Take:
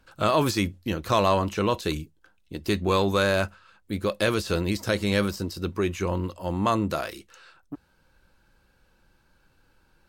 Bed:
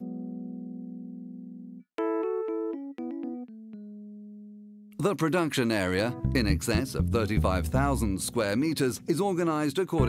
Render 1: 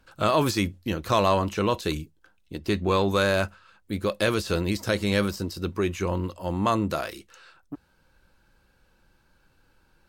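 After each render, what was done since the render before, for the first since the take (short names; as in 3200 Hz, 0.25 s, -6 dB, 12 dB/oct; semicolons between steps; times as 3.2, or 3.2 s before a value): 2.58–3.11 high shelf 6000 Hz -7.5 dB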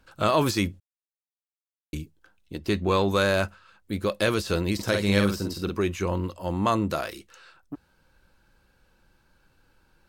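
0.8–1.93 mute; 4.74–5.82 doubler 50 ms -4.5 dB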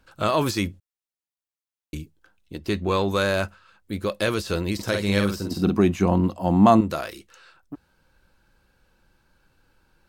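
5.51–6.81 small resonant body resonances 210/710 Hz, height 13 dB, ringing for 20 ms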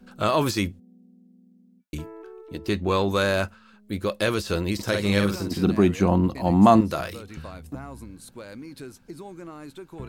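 add bed -13.5 dB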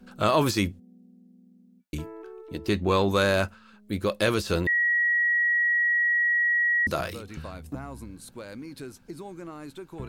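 4.67–6.87 bleep 1910 Hz -20 dBFS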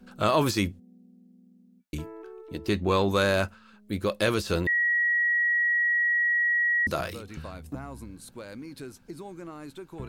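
gain -1 dB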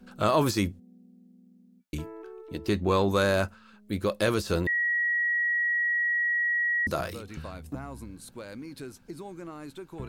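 dynamic EQ 2800 Hz, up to -4 dB, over -41 dBFS, Q 1.1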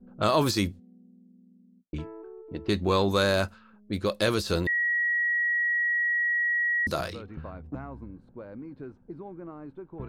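dynamic EQ 4100 Hz, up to +6 dB, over -51 dBFS, Q 2; low-pass opened by the level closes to 420 Hz, open at -25.5 dBFS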